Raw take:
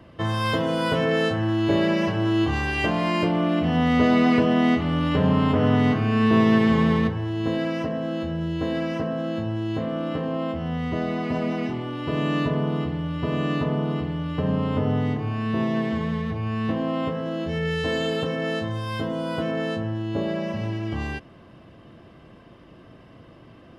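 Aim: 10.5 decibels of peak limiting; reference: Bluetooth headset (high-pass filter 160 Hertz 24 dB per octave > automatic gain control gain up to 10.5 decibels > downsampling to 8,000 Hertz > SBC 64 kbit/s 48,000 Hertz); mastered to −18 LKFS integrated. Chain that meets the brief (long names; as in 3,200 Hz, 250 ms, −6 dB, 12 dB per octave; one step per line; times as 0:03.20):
brickwall limiter −17.5 dBFS
high-pass filter 160 Hz 24 dB per octave
automatic gain control gain up to 10.5 dB
downsampling to 8,000 Hz
level +4 dB
SBC 64 kbit/s 48,000 Hz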